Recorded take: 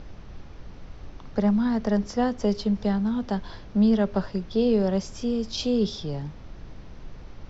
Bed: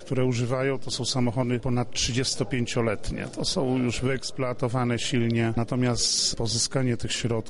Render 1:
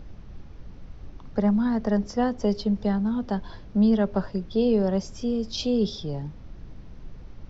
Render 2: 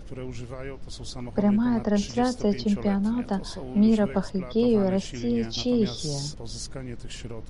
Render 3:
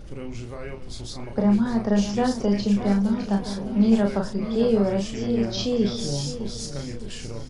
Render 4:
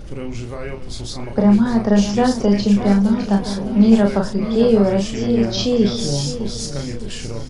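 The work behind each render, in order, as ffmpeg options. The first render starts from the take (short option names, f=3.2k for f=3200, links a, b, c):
-af "afftdn=nr=6:nf=-43"
-filter_complex "[1:a]volume=-12dB[a];[0:a][a]amix=inputs=2:normalize=0"
-filter_complex "[0:a]asplit=2[a][b];[b]adelay=35,volume=-4dB[c];[a][c]amix=inputs=2:normalize=0,aecho=1:1:609|1218|1827|2436:0.282|0.116|0.0474|0.0194"
-af "volume=6.5dB"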